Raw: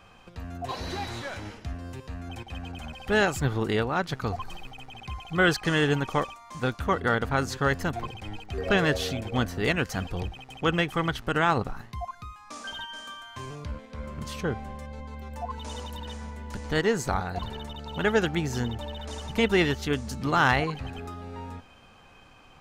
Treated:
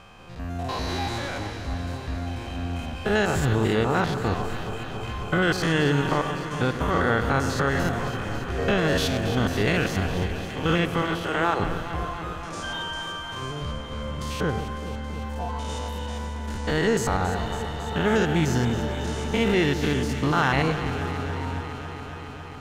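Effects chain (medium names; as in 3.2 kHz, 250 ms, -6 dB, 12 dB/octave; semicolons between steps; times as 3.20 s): spectrogram pixelated in time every 100 ms; peak limiter -18.5 dBFS, peak gain reduction 7.5 dB; 11.02–11.60 s: elliptic high-pass 320 Hz; on a send: echo whose repeats swap between lows and highs 138 ms, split 1.3 kHz, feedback 89%, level -10 dB; on the sum: trim +6.5 dB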